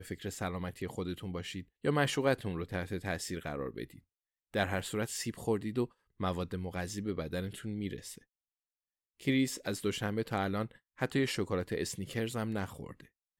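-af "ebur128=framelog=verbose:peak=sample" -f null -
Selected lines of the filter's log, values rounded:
Integrated loudness:
  I:         -35.6 LUFS
  Threshold: -45.9 LUFS
Loudness range:
  LRA:         3.3 LU
  Threshold: -56.1 LUFS
  LRA low:   -37.7 LUFS
  LRA high:  -34.4 LUFS
Sample peak:
  Peak:      -14.2 dBFS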